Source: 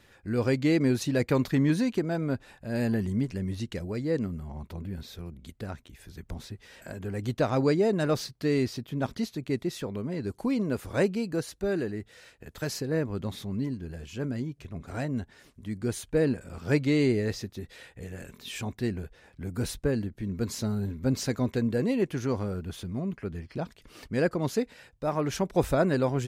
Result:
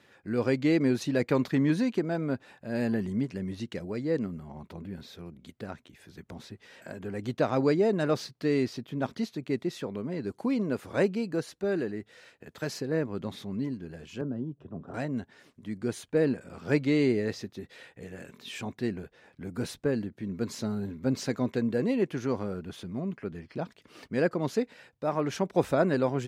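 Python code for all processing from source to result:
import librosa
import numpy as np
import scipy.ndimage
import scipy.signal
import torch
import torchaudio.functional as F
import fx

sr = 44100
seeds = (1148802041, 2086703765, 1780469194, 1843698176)

y = fx.chain(x, sr, fx.moving_average(points=20),
    fx.band_squash(depth_pct=40), at=(14.21, 14.94))
y = scipy.signal.sosfilt(scipy.signal.butter(2, 150.0, 'highpass', fs=sr, output='sos'), y)
y = fx.high_shelf(y, sr, hz=6900.0, db=-10.0)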